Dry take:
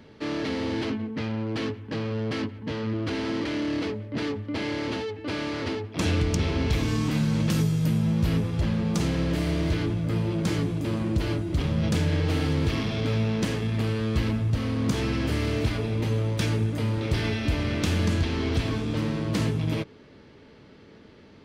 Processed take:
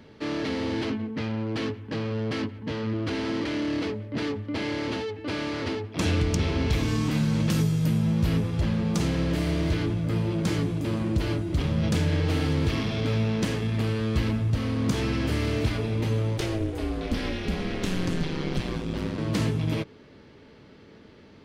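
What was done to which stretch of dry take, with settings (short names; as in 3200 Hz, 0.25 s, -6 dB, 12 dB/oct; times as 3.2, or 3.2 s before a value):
16.37–19.17 ring modulator 240 Hz -> 46 Hz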